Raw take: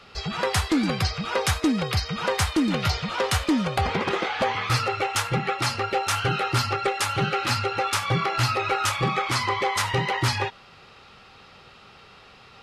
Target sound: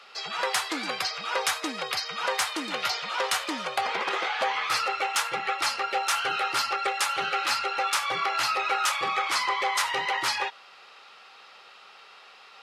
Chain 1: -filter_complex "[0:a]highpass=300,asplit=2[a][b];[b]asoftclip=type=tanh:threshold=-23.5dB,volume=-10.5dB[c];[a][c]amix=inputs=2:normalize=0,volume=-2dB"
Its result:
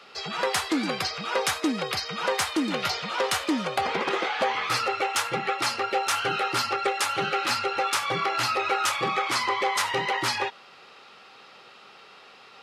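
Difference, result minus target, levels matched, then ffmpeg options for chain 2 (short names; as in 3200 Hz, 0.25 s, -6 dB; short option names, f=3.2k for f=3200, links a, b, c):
250 Hz band +9.0 dB
-filter_complex "[0:a]highpass=640,asplit=2[a][b];[b]asoftclip=type=tanh:threshold=-23.5dB,volume=-10.5dB[c];[a][c]amix=inputs=2:normalize=0,volume=-2dB"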